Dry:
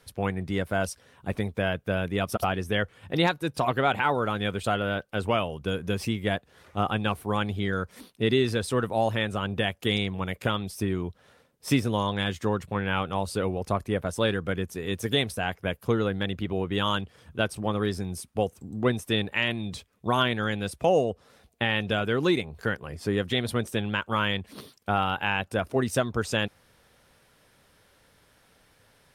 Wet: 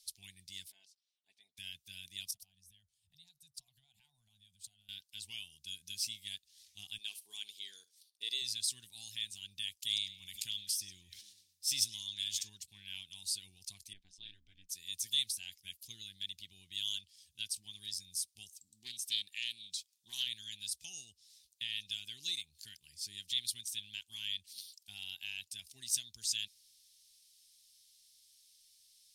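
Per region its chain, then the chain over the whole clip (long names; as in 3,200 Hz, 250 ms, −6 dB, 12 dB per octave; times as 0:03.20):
0:00.70–0:01.57: ceiling on every frequency bin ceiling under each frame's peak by 16 dB + resonant band-pass 610 Hz, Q 3.6 + comb filter 4.6 ms, depth 42%
0:02.31–0:04.89: drawn EQ curve 190 Hz 0 dB, 350 Hz −28 dB, 660 Hz +1 dB, 2,000 Hz −18 dB, 9,200 Hz −10 dB + downward compressor 16 to 1, threshold −36 dBFS + multiband upward and downward expander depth 40%
0:06.98–0:08.42: noise gate −43 dBFS, range −16 dB + high-pass with resonance 460 Hz, resonance Q 3.7 + flutter between parallel walls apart 11.4 metres, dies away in 0.21 s
0:09.87–0:12.50: echo through a band-pass that steps 101 ms, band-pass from 5,100 Hz, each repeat −1.4 octaves, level −12 dB + level that may fall only so fast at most 56 dB per second
0:13.93–0:14.69: ring modulation 95 Hz + head-to-tape spacing loss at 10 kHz 29 dB
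0:18.51–0:20.27: high-pass filter 210 Hz 6 dB per octave + highs frequency-modulated by the lows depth 0.26 ms
whole clip: inverse Chebyshev high-pass filter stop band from 1,400 Hz, stop band 60 dB; spectral tilt −4 dB per octave; level +15.5 dB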